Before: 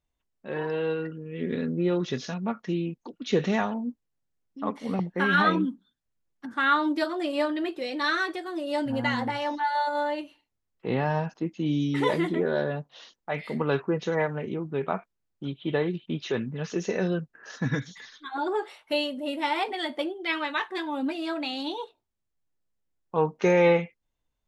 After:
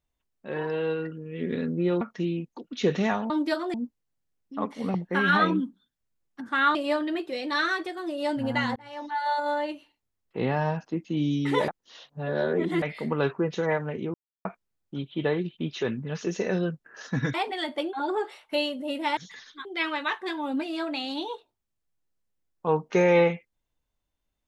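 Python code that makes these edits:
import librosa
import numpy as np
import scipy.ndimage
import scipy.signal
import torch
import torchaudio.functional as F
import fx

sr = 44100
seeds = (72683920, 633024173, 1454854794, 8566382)

y = fx.edit(x, sr, fx.cut(start_s=2.01, length_s=0.49),
    fx.move(start_s=6.8, length_s=0.44, to_s=3.79),
    fx.fade_in_span(start_s=9.25, length_s=0.56),
    fx.reverse_span(start_s=12.17, length_s=1.14),
    fx.silence(start_s=14.63, length_s=0.31),
    fx.swap(start_s=17.83, length_s=0.48, other_s=19.55, other_length_s=0.59), tone=tone)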